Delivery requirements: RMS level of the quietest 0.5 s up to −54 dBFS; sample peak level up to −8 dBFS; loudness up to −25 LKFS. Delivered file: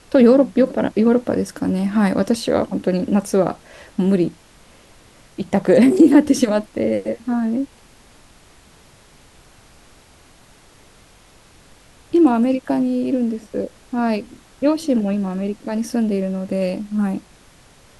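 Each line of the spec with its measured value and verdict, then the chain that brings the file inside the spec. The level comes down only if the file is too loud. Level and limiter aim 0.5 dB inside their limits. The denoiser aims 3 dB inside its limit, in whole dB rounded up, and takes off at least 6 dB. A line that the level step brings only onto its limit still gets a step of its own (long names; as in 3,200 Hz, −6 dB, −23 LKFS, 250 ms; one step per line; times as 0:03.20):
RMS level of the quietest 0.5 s −49 dBFS: out of spec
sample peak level −2.5 dBFS: out of spec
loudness −18.5 LKFS: out of spec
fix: level −7 dB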